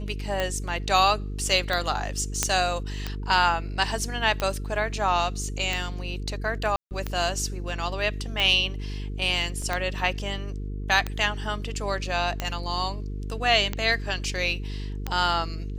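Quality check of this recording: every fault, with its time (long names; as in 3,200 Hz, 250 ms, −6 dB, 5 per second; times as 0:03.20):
mains buzz 50 Hz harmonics 9 −32 dBFS
scratch tick 45 rpm −12 dBFS
0:02.43: click −5 dBFS
0:06.76–0:06.91: drop-out 149 ms
0:09.62: drop-out 2.9 ms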